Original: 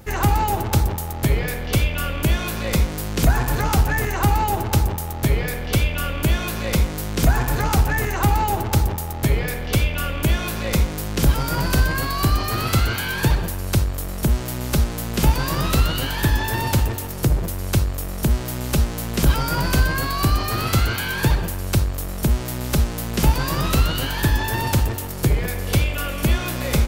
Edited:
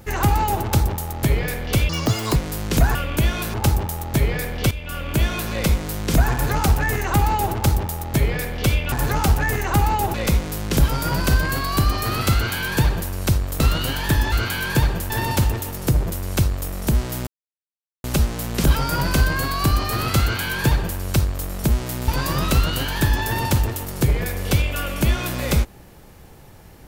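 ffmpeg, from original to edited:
ffmpeg -i in.wav -filter_complex "[0:a]asplit=13[link_01][link_02][link_03][link_04][link_05][link_06][link_07][link_08][link_09][link_10][link_11][link_12][link_13];[link_01]atrim=end=1.894[link_14];[link_02]atrim=start=1.89:end=2.82,asetpts=PTS-STARTPTS,asetrate=87318,aresample=44100[link_15];[link_03]atrim=start=2.816:end=3.412[link_16];[link_04]atrim=start=10.008:end=10.602[link_17];[link_05]atrim=start=4.628:end=5.8,asetpts=PTS-STARTPTS,afade=type=out:start_time=1.168:duration=0.004:curve=hsin:silence=0.211349[link_18];[link_06]atrim=start=5.8:end=10.012,asetpts=PTS-STARTPTS,afade=type=in:duration=0.51:silence=0.211349[link_19];[link_07]atrim=start=3.408:end=4.632[link_20];[link_08]atrim=start=10.598:end=14.062[link_21];[link_09]atrim=start=15.738:end=16.462[link_22];[link_10]atrim=start=20.798:end=21.582[link_23];[link_11]atrim=start=16.458:end=18.63,asetpts=PTS-STARTPTS,afade=type=out:start_time=2.168:duration=0.004:curve=hsin,apad=pad_dur=0.77[link_24];[link_12]atrim=start=18.63:end=22.672,asetpts=PTS-STARTPTS,afade=type=in:duration=0.004:curve=hsin[link_25];[link_13]atrim=start=23.298[link_26];[link_14][link_15]acrossfade=duration=0.004:curve1=hsin:curve2=hsin[link_27];[link_27][link_16]acrossfade=duration=0.004:curve1=hsin:curve2=hsin[link_28];[link_28][link_17]acrossfade=duration=0.004:curve1=hsin:curve2=hsin[link_29];[link_18][link_19]concat=n=2:v=0:a=1[link_30];[link_29][link_30]acrossfade=duration=0.004:curve1=hsin:curve2=hsin[link_31];[link_31][link_20]acrossfade=duration=0.004:curve1=hsin:curve2=hsin[link_32];[link_32][link_21]acrossfade=duration=0.004:curve1=hsin:curve2=hsin[link_33];[link_33][link_22]acrossfade=duration=0.004:curve1=hsin:curve2=hsin[link_34];[link_34][link_23]acrossfade=duration=0.004:curve1=hsin:curve2=hsin[link_35];[link_24][link_25]concat=n=2:v=0:a=1[link_36];[link_35][link_36]acrossfade=duration=0.004:curve1=hsin:curve2=hsin[link_37];[link_37][link_26]acrossfade=duration=0.004:curve1=hsin:curve2=hsin" out.wav

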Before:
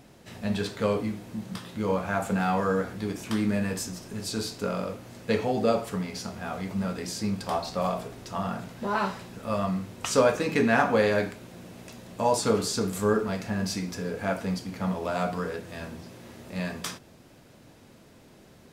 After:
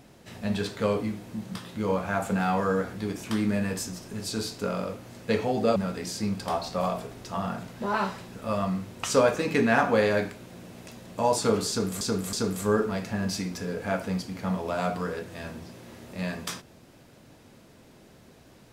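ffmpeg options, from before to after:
ffmpeg -i in.wav -filter_complex "[0:a]asplit=4[link_01][link_02][link_03][link_04];[link_01]atrim=end=5.762[link_05];[link_02]atrim=start=6.768:end=13.022[link_06];[link_03]atrim=start=12.698:end=13.022[link_07];[link_04]atrim=start=12.698[link_08];[link_05][link_06]acrossfade=duration=0.004:curve1=hsin:curve2=hsin[link_09];[link_09][link_07]acrossfade=duration=0.004:curve1=hsin:curve2=hsin[link_10];[link_10][link_08]acrossfade=duration=0.004:curve1=hsin:curve2=hsin" out.wav

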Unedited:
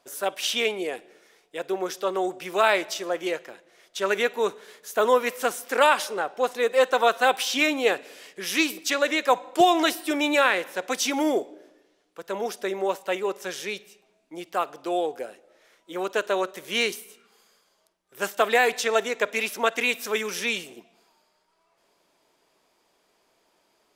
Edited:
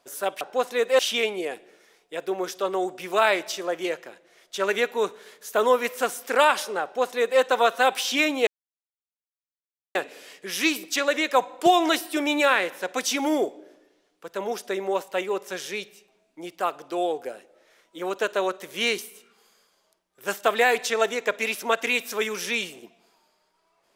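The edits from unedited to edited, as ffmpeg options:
ffmpeg -i in.wav -filter_complex "[0:a]asplit=4[link_01][link_02][link_03][link_04];[link_01]atrim=end=0.412[link_05];[link_02]atrim=start=6.248:end=6.832[link_06];[link_03]atrim=start=0.408:end=7.89,asetpts=PTS-STARTPTS,afade=type=out:start_time=7.478:duration=0.004:curve=hsin,apad=pad_dur=1.48[link_07];[link_04]atrim=start=7.89,asetpts=PTS-STARTPTS,afade=type=in:duration=0.004:curve=hsin[link_08];[link_05][link_06]acrossfade=duration=0.004:curve1=hsin:curve2=hsin[link_09];[link_07][link_08]concat=n=2:v=0:a=1[link_10];[link_09][link_10]acrossfade=duration=0.004:curve1=hsin:curve2=hsin" out.wav

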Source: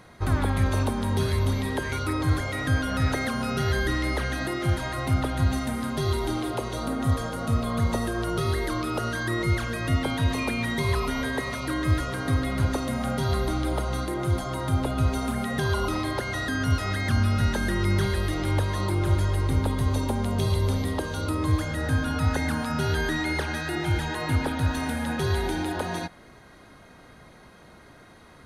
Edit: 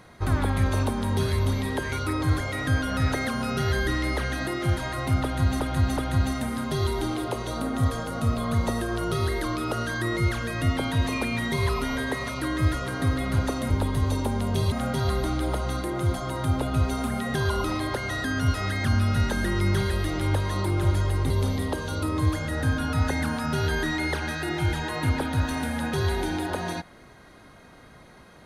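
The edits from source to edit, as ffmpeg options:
ffmpeg -i in.wav -filter_complex "[0:a]asplit=6[link_01][link_02][link_03][link_04][link_05][link_06];[link_01]atrim=end=5.602[link_07];[link_02]atrim=start=5.228:end=5.602[link_08];[link_03]atrim=start=5.228:end=12.962[link_09];[link_04]atrim=start=19.538:end=20.562[link_10];[link_05]atrim=start=12.958:end=19.542[link_11];[link_06]atrim=start=20.558[link_12];[link_07][link_08]acrossfade=duration=0.004:curve1=hsin:curve2=hsin[link_13];[link_13][link_09]acrossfade=duration=0.004:curve1=hsin:curve2=hsin[link_14];[link_14][link_10]acrossfade=duration=0.004:curve1=hsin:curve2=hsin[link_15];[link_15][link_11]acrossfade=duration=0.004:curve1=hsin:curve2=hsin[link_16];[link_16][link_12]acrossfade=duration=0.004:curve1=hsin:curve2=hsin" out.wav

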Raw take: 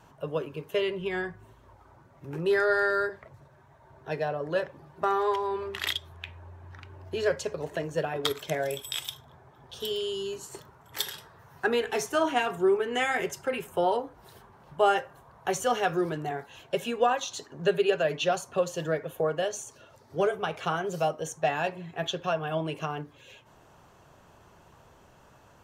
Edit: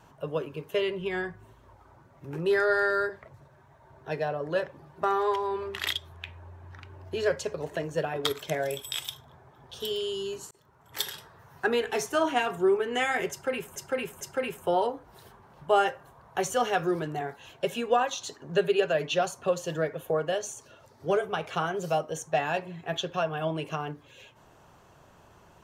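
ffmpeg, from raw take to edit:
ffmpeg -i in.wav -filter_complex "[0:a]asplit=4[link_01][link_02][link_03][link_04];[link_01]atrim=end=10.51,asetpts=PTS-STARTPTS,afade=type=out:start_time=10.506:duration=0.004:curve=hsin[link_05];[link_02]atrim=start=10.51:end=13.762,asetpts=PTS-STARTPTS,afade=type=in:duration=0.49[link_06];[link_03]atrim=start=13.308:end=13.762[link_07];[link_04]atrim=start=13.308[link_08];[link_05][link_06]concat=n=2:v=0:a=1[link_09];[link_09][link_07]acrossfade=duration=0.004:curve1=hsin:curve2=hsin[link_10];[link_10][link_08]acrossfade=duration=0.004:curve1=hsin:curve2=hsin" out.wav

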